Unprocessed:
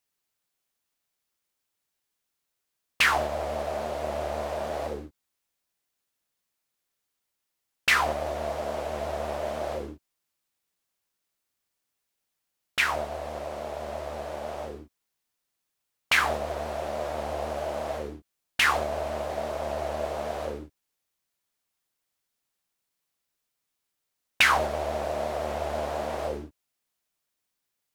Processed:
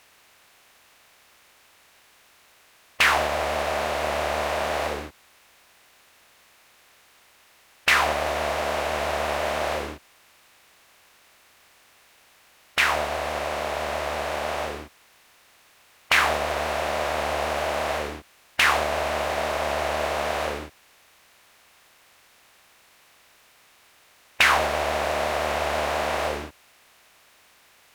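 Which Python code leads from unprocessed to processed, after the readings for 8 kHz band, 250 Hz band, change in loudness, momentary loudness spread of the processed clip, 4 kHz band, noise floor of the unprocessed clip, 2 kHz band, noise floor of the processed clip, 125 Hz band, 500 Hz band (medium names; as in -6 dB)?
+5.0 dB, +3.0 dB, +4.0 dB, 11 LU, +4.5 dB, -82 dBFS, +4.0 dB, -58 dBFS, +2.5 dB, +3.5 dB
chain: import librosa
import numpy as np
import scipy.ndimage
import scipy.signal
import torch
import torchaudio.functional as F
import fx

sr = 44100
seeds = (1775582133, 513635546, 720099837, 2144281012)

y = fx.bin_compress(x, sr, power=0.6)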